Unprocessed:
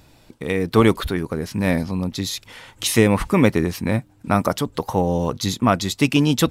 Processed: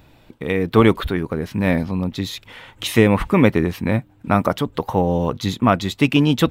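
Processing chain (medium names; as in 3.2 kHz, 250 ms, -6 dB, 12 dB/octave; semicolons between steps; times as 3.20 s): high-order bell 7.4 kHz -9.5 dB; trim +1.5 dB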